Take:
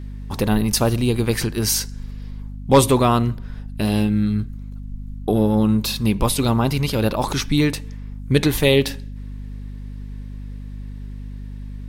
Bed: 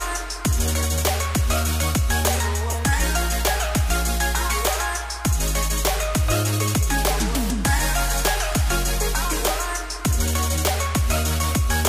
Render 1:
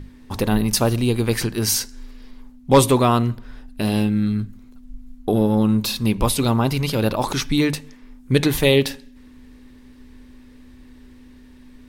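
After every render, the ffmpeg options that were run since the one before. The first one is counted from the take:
ffmpeg -i in.wav -af "bandreject=frequency=50:width_type=h:width=6,bandreject=frequency=100:width_type=h:width=6,bandreject=frequency=150:width_type=h:width=6,bandreject=frequency=200:width_type=h:width=6" out.wav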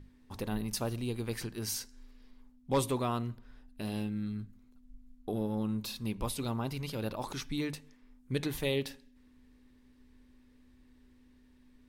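ffmpeg -i in.wav -af "volume=-16dB" out.wav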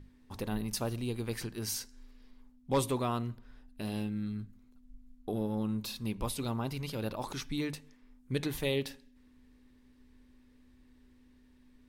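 ffmpeg -i in.wav -af anull out.wav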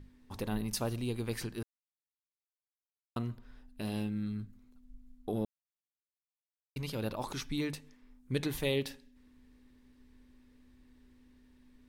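ffmpeg -i in.wav -filter_complex "[0:a]asplit=5[link_01][link_02][link_03][link_04][link_05];[link_01]atrim=end=1.63,asetpts=PTS-STARTPTS,afade=type=out:start_time=1.626:duration=0.004:curve=hsin[link_06];[link_02]atrim=start=1.63:end=3.16,asetpts=PTS-STARTPTS,volume=0[link_07];[link_03]atrim=start=3.16:end=5.45,asetpts=PTS-STARTPTS,afade=type=in:duration=0.004:curve=hsin,afade=type=out:start_time=2.286:duration=0.004:curve=hsin[link_08];[link_04]atrim=start=5.45:end=6.76,asetpts=PTS-STARTPTS,volume=0[link_09];[link_05]atrim=start=6.76,asetpts=PTS-STARTPTS,afade=type=in:duration=0.004:curve=hsin[link_10];[link_06][link_07][link_08][link_09][link_10]concat=n=5:v=0:a=1" out.wav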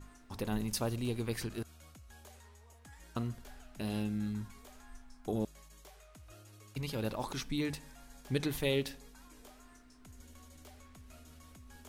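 ffmpeg -i in.wav -i bed.wav -filter_complex "[1:a]volume=-35dB[link_01];[0:a][link_01]amix=inputs=2:normalize=0" out.wav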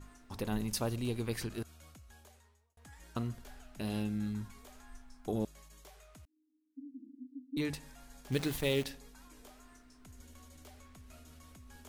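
ffmpeg -i in.wav -filter_complex "[0:a]asettb=1/sr,asplit=3[link_01][link_02][link_03];[link_01]atrim=end=6.254[link_04];[link_02]atrim=start=6.25:end=7.57,asetpts=PTS-STARTPTS,afade=type=in:duration=0.004:curve=qsin,afade=type=out:start_time=1.316:duration=0.004:curve=qsin,asuperpass=centerf=270:order=8:qfactor=4.6[link_05];[link_03]atrim=start=7.566[link_06];[link_04][link_05]acrossfade=duration=0.004:curve1=hsin:curve2=qsin[link_07];[link_07][link_06]acrossfade=duration=0.004:curve1=qsin:curve2=hsin,asettb=1/sr,asplit=3[link_08][link_09][link_10];[link_08]atrim=end=8.324[link_11];[link_09]atrim=start=8.32:end=8.85,asetpts=PTS-STARTPTS,afade=type=in:duration=0.004:curve=qsin,afade=type=out:start_time=0.526:duration=0.004:curve=qsin,acrusher=bits=8:dc=4:mix=0:aa=0.000001[link_12];[link_10]atrim=start=8.846[link_13];[link_11][link_12]acrossfade=duration=0.004:curve1=hsin:curve2=qsin[link_14];[link_14][link_13]acrossfade=duration=0.004:curve1=qsin:curve2=hsin,asplit=2[link_15][link_16];[link_15]atrim=end=2.77,asetpts=PTS-STARTPTS,afade=type=out:start_time=1.96:duration=0.81[link_17];[link_16]atrim=start=2.77,asetpts=PTS-STARTPTS,afade=type=in:duration=0.004:curve=hsin[link_18];[link_17][link_18]concat=n=2:v=0:a=1" out.wav

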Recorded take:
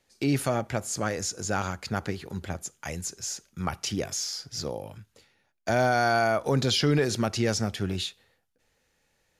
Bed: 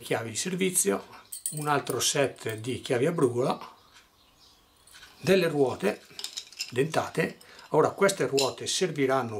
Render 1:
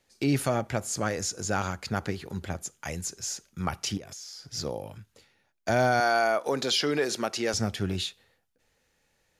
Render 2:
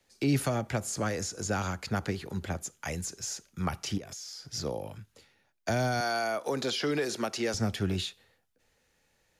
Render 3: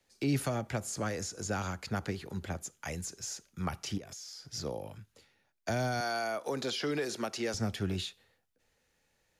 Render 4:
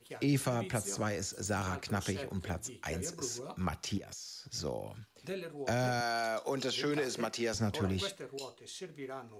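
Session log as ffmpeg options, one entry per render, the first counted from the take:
ffmpeg -i in.wav -filter_complex "[0:a]asettb=1/sr,asplit=3[link_01][link_02][link_03];[link_01]atrim=end=3.974[link_04];[link_02]atrim=start=3.97:end=4.53,asetpts=PTS-STARTPTS,afade=type=in:duration=0.004:curve=qsin,afade=type=out:start_time=0.556:duration=0.004:curve=qsin,acompressor=threshold=-40dB:ratio=6:attack=3.2:release=140:knee=1:detection=peak[link_05];[link_03]atrim=start=4.526[link_06];[link_04][link_05]acrossfade=duration=0.004:curve1=hsin:curve2=qsin[link_07];[link_07][link_06]acrossfade=duration=0.004:curve1=qsin:curve2=hsin,asettb=1/sr,asplit=3[link_08][link_09][link_10];[link_08]atrim=end=6.004[link_11];[link_09]atrim=start=6:end=7.54,asetpts=PTS-STARTPTS,afade=type=in:duration=0.004:curve=qsin,afade=type=out:start_time=1.536:duration=0.004:curve=qsin,highpass=330[link_12];[link_10]atrim=start=7.536[link_13];[link_11][link_12]acrossfade=duration=0.004:curve1=hsin:curve2=qsin[link_14];[link_14][link_13]acrossfade=duration=0.004:curve1=qsin:curve2=hsin" out.wav
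ffmpeg -i in.wav -filter_complex "[0:a]acrossover=split=250|3000[link_01][link_02][link_03];[link_02]acompressor=threshold=-28dB:ratio=6[link_04];[link_01][link_04][link_03]amix=inputs=3:normalize=0,acrossover=split=330|930|2000[link_05][link_06][link_07][link_08];[link_08]alimiter=level_in=2.5dB:limit=-24dB:level=0:latency=1:release=67,volume=-2.5dB[link_09];[link_05][link_06][link_07][link_09]amix=inputs=4:normalize=0" out.wav
ffmpeg -i in.wav -af "volume=-3.5dB" out.wav
ffmpeg -i in.wav -i bed.wav -filter_complex "[1:a]volume=-18dB[link_01];[0:a][link_01]amix=inputs=2:normalize=0" out.wav

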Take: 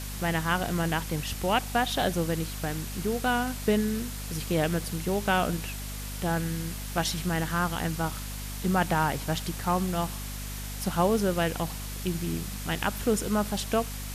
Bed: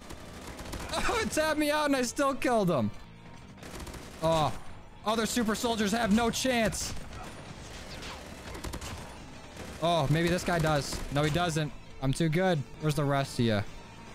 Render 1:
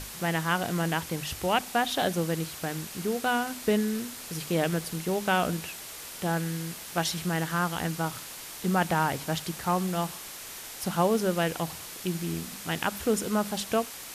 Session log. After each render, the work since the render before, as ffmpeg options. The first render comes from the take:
ffmpeg -i in.wav -af "bandreject=frequency=50:width_type=h:width=6,bandreject=frequency=100:width_type=h:width=6,bandreject=frequency=150:width_type=h:width=6,bandreject=frequency=200:width_type=h:width=6,bandreject=frequency=250:width_type=h:width=6" out.wav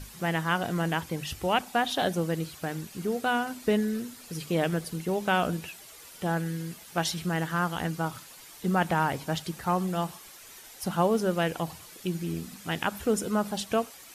ffmpeg -i in.wav -af "afftdn=noise_reduction=10:noise_floor=-42" out.wav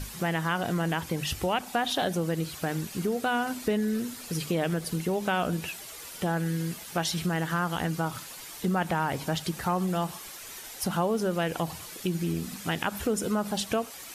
ffmpeg -i in.wav -filter_complex "[0:a]asplit=2[link_01][link_02];[link_02]alimiter=limit=-23dB:level=0:latency=1:release=58,volume=-0.5dB[link_03];[link_01][link_03]amix=inputs=2:normalize=0,acompressor=threshold=-27dB:ratio=2" out.wav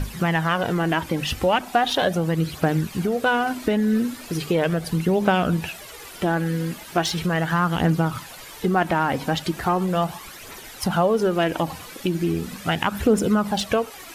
ffmpeg -i in.wav -filter_complex "[0:a]aphaser=in_gain=1:out_gain=1:delay=4.1:decay=0.39:speed=0.38:type=triangular,asplit=2[link_01][link_02];[link_02]adynamicsmooth=sensitivity=4:basefreq=3900,volume=1.5dB[link_03];[link_01][link_03]amix=inputs=2:normalize=0" out.wav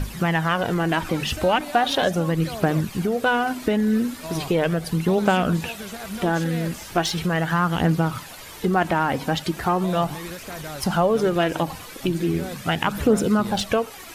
ffmpeg -i in.wav -i bed.wav -filter_complex "[1:a]volume=-8dB[link_01];[0:a][link_01]amix=inputs=2:normalize=0" out.wav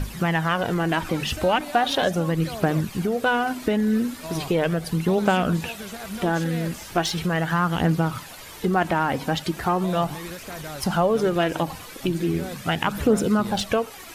ffmpeg -i in.wav -af "volume=-1dB" out.wav

